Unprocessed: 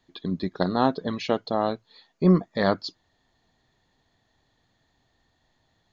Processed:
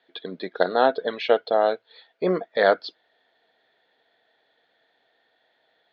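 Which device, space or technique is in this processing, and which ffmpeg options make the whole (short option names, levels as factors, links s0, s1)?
phone earpiece: -af "highpass=430,equalizer=f=470:t=q:w=4:g=9,equalizer=f=670:t=q:w=4:g=6,equalizer=f=1100:t=q:w=4:g=-7,equalizer=f=1500:t=q:w=4:g=9,equalizer=f=2200:t=q:w=4:g=4,equalizer=f=3400:t=q:w=4:g=5,lowpass=f=4100:w=0.5412,lowpass=f=4100:w=1.3066,volume=1.19"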